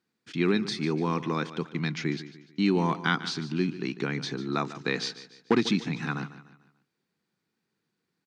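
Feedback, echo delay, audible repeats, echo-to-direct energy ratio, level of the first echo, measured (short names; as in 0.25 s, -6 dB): 41%, 0.147 s, 3, -13.5 dB, -14.5 dB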